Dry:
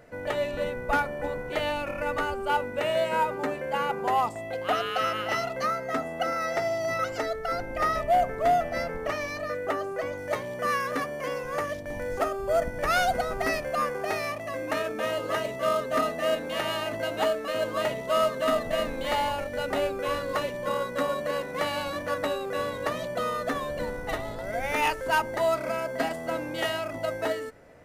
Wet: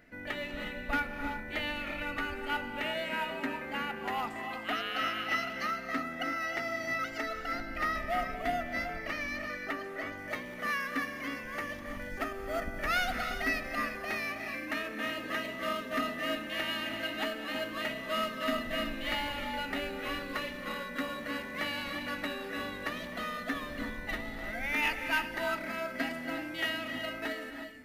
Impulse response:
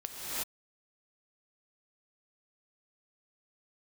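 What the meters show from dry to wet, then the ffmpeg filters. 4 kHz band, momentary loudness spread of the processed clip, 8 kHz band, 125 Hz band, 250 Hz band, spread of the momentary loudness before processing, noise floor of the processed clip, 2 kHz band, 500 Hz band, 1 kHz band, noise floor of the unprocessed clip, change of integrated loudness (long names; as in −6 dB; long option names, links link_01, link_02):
−1.5 dB, 6 LU, −7.5 dB, −8.0 dB, −2.0 dB, 7 LU, −42 dBFS, −1.0 dB, −12.0 dB, −8.5 dB, −37 dBFS, −6.0 dB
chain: -filter_complex "[0:a]equalizer=frequency=125:width_type=o:width=1:gain=-10,equalizer=frequency=250:width_type=o:width=1:gain=6,equalizer=frequency=500:width_type=o:width=1:gain=-12,equalizer=frequency=1000:width_type=o:width=1:gain=-7,equalizer=frequency=2000:width_type=o:width=1:gain=5,equalizer=frequency=8000:width_type=o:width=1:gain=-8,asplit=2[link_01][link_02];[1:a]atrim=start_sample=2205[link_03];[link_02][link_03]afir=irnorm=-1:irlink=0,volume=-8dB[link_04];[link_01][link_04]amix=inputs=2:normalize=0,volume=-5dB"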